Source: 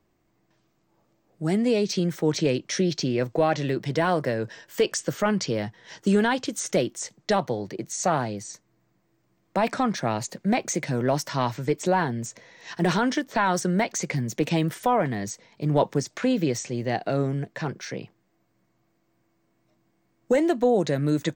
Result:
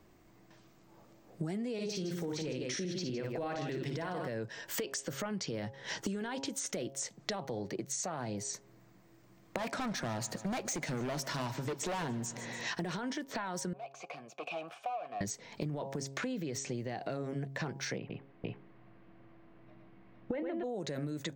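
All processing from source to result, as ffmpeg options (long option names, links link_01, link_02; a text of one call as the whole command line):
ffmpeg -i in.wav -filter_complex "[0:a]asettb=1/sr,asplit=3[link_01][link_02][link_03];[link_01]atrim=end=1.734[link_04];[link_02]atrim=start=1.73:end=4.28,asetpts=PTS-STARTPTS,afade=type=in:duration=0.004:curve=qsin,afade=type=out:start_time=2.546:duration=0.004:curve=qsin,bandreject=frequency=610:width=20,aecho=1:1:55|158:0.596|0.355,atrim=end_sample=112455[link_05];[link_03]atrim=start=4.276[link_06];[link_04][link_05]acrossfade=duration=0.004:curve1=hsin:curve2=qsin[link_07];[link_07][link_06]acrossfade=duration=0.004:curve1=qsin:curve2=hsin,asettb=1/sr,asplit=3[link_08][link_09][link_10];[link_08]atrim=end=9.584[link_11];[link_09]atrim=start=9.58:end=12.7,asetpts=PTS-STARTPTS,afade=type=in:duration=0.004:curve=qsin,afade=type=out:start_time=3.116:duration=0.004:curve=qsin,highpass=110,asoftclip=type=hard:threshold=-27dB,aecho=1:1:144|288|432|576|720:0.126|0.0705|0.0395|0.0221|0.0124,atrim=end_sample=137592[link_12];[link_10]atrim=start=12.696[link_13];[link_11][link_12]acrossfade=duration=0.004:curve1=hsin:curve2=qsin[link_14];[link_14][link_13]acrossfade=duration=0.004:curve1=qsin:curve2=hsin,asettb=1/sr,asplit=3[link_15][link_16][link_17];[link_15]atrim=end=13.734[link_18];[link_16]atrim=start=13.73:end=15.21,asetpts=PTS-STARTPTS,afade=type=in:duration=0.004:curve=qsin,afade=type=out:start_time=1.476:duration=0.004:curve=qsin,lowshelf=frequency=420:gain=-10.5,asoftclip=type=hard:threshold=-29.5dB,asplit=3[link_19][link_20][link_21];[link_19]bandpass=frequency=730:width_type=q:width=8,volume=0dB[link_22];[link_20]bandpass=frequency=1090:width_type=q:width=8,volume=-6dB[link_23];[link_21]bandpass=frequency=2440:width_type=q:width=8,volume=-9dB[link_24];[link_22][link_23][link_24]amix=inputs=3:normalize=0[link_25];[link_17]atrim=start=15.206[link_26];[link_18][link_25]acrossfade=duration=0.004:curve1=hsin:curve2=qsin[link_27];[link_27][link_26]acrossfade=duration=0.004:curve1=qsin:curve2=hsin,asettb=1/sr,asplit=3[link_28][link_29][link_30];[link_28]atrim=end=17.984[link_31];[link_29]atrim=start=17.98:end=20.64,asetpts=PTS-STARTPTS,afade=type=in:duration=0.004:curve=qsin,afade=type=out:start_time=2.656:duration=0.004:curve=qsin,lowpass=frequency=3100:width=0.5412,lowpass=frequency=3100:width=1.3066,aecho=1:1:115|458|475:0.668|0.596|0.282,atrim=end_sample=117306[link_32];[link_30]atrim=start=20.636[link_33];[link_31][link_32]acrossfade=duration=0.004:curve1=hsin:curve2=qsin[link_34];[link_34][link_33]acrossfade=duration=0.004:curve1=qsin:curve2=hsin,bandreject=frequency=136.4:width_type=h:width=4,bandreject=frequency=272.8:width_type=h:width=4,bandreject=frequency=409.2:width_type=h:width=4,bandreject=frequency=545.6:width_type=h:width=4,bandreject=frequency=682:width_type=h:width=4,bandreject=frequency=818.4:width_type=h:width=4,bandreject=frequency=954.8:width_type=h:width=4,alimiter=limit=-20.5dB:level=0:latency=1:release=37,acompressor=threshold=-42dB:ratio=12,volume=7.5dB" out.wav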